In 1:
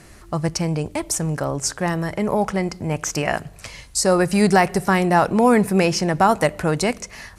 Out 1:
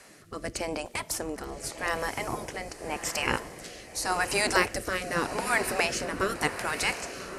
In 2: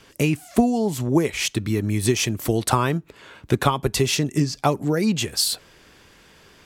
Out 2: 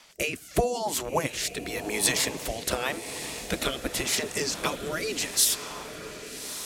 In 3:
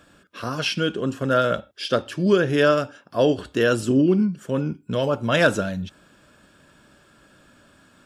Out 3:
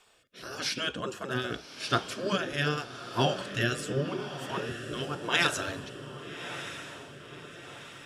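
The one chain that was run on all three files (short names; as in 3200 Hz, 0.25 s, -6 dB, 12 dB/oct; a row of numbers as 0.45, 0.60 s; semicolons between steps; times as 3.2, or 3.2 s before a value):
spectral gate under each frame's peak -10 dB weak; diffused feedback echo 1.144 s, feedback 54%, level -10.5 dB; rotary speaker horn 0.85 Hz; normalise peaks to -9 dBFS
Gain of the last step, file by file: +1.0, +5.0, +1.5 dB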